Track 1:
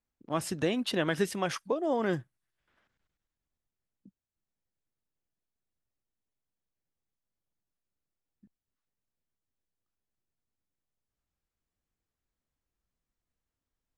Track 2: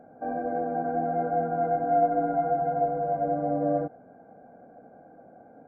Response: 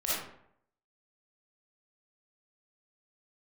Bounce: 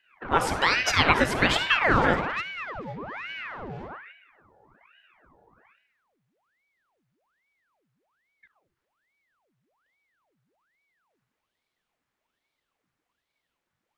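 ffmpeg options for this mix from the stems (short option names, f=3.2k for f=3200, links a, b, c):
-filter_complex "[0:a]equalizer=f=1.5k:w=0.44:g=13.5,volume=1.5dB,asplit=3[a][b][c];[b]volume=-14.5dB[d];[1:a]lowpass=1.7k,aecho=1:1:3.2:0.5,aeval=exprs='(tanh(31.6*val(0)+0.25)-tanh(0.25))/31.6':c=same,volume=1.5dB,asplit=2[e][f];[f]volume=-16.5dB[g];[c]apad=whole_len=250363[h];[e][h]sidechaingate=range=-33dB:threshold=-54dB:ratio=16:detection=peak[i];[2:a]atrim=start_sample=2205[j];[d][g]amix=inputs=2:normalize=0[k];[k][j]afir=irnorm=-1:irlink=0[l];[a][i][l]amix=inputs=3:normalize=0,aeval=exprs='val(0)*sin(2*PI*1200*n/s+1200*0.9/1.2*sin(2*PI*1.2*n/s))':c=same"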